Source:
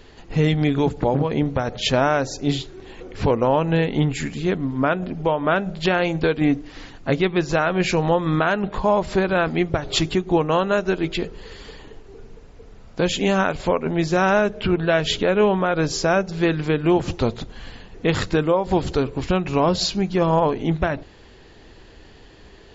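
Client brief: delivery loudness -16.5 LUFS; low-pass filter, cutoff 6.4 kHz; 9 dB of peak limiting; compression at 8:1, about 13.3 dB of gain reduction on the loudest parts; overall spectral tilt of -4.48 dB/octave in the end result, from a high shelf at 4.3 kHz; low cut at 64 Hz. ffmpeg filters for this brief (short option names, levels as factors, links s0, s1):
-af "highpass=64,lowpass=6400,highshelf=f=4300:g=7.5,acompressor=threshold=0.0398:ratio=8,volume=8.41,alimiter=limit=0.473:level=0:latency=1"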